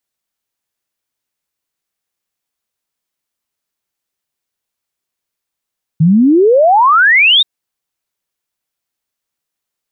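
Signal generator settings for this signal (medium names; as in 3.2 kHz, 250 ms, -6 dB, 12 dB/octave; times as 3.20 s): log sweep 150 Hz -> 3.8 kHz 1.43 s -5 dBFS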